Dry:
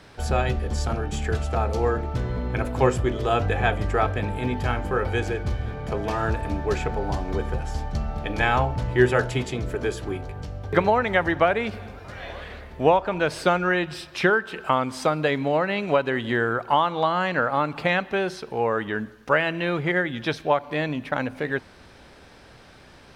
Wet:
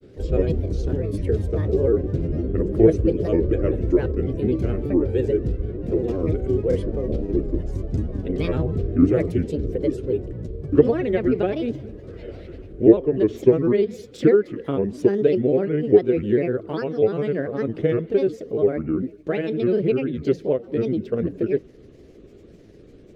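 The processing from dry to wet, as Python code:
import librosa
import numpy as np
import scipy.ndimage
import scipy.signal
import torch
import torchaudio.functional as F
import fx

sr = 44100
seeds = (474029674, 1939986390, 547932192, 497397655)

y = fx.granulator(x, sr, seeds[0], grain_ms=100.0, per_s=20.0, spray_ms=15.0, spread_st=7)
y = fx.low_shelf_res(y, sr, hz=610.0, db=13.5, q=3.0)
y = F.gain(torch.from_numpy(y), -10.5).numpy()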